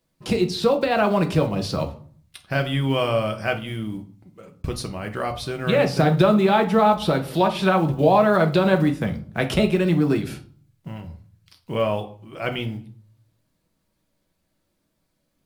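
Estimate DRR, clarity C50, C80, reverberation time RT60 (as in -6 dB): 4.5 dB, 13.5 dB, 19.0 dB, 0.50 s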